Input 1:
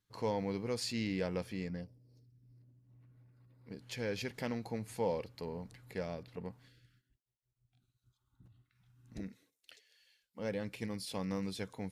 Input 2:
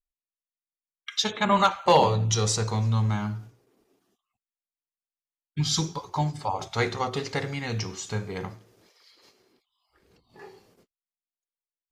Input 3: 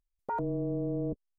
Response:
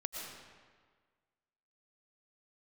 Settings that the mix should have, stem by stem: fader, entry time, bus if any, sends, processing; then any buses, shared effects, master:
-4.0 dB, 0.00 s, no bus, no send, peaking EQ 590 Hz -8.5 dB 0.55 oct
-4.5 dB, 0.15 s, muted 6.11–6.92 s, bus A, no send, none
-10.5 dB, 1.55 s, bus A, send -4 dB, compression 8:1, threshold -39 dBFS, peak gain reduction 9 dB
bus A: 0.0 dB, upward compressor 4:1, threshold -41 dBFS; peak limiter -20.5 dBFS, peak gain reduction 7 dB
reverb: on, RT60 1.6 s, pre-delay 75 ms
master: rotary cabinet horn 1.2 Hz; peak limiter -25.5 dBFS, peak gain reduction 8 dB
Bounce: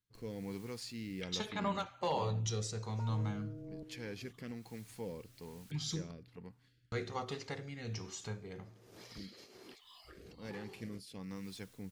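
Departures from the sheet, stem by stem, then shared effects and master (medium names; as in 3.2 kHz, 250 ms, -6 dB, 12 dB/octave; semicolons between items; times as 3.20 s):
stem 2 -4.5 dB -> -10.5 dB; stem 3: entry 1.55 s -> 2.70 s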